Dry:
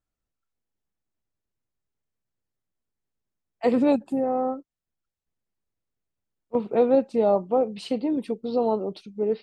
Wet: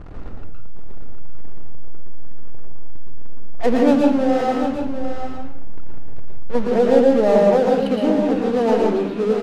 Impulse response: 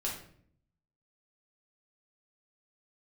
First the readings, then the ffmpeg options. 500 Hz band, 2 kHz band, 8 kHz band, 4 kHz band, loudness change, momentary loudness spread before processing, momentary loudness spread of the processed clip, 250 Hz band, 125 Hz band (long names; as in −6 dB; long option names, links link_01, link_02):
+7.0 dB, +13.0 dB, can't be measured, +8.5 dB, +7.0 dB, 9 LU, 13 LU, +8.0 dB, +12.5 dB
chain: -filter_complex "[0:a]aeval=exprs='val(0)+0.5*0.0355*sgn(val(0))':channel_layout=same,adynamicsmooth=sensitivity=3.5:basefreq=630,aecho=1:1:749:0.355,asplit=2[link_01][link_02];[1:a]atrim=start_sample=2205,adelay=114[link_03];[link_02][link_03]afir=irnorm=-1:irlink=0,volume=-2.5dB[link_04];[link_01][link_04]amix=inputs=2:normalize=0,volume=2dB"